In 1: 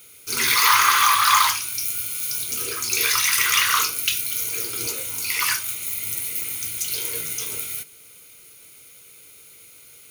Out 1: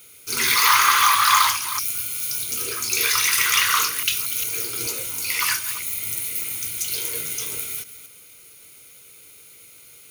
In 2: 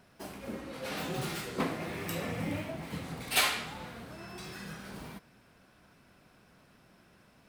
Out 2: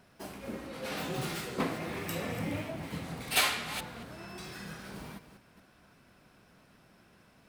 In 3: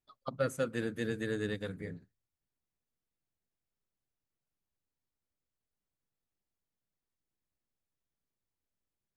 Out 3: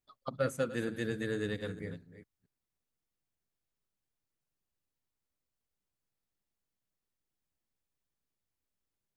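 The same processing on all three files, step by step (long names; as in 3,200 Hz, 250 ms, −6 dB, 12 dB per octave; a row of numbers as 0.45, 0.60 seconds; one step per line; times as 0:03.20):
delay that plays each chunk backwards 224 ms, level −12.5 dB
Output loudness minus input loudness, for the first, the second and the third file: 0.0, 0.0, 0.0 LU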